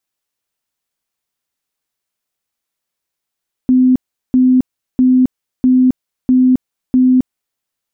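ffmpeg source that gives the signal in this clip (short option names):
-f lavfi -i "aevalsrc='0.473*sin(2*PI*255*mod(t,0.65))*lt(mod(t,0.65),68/255)':d=3.9:s=44100"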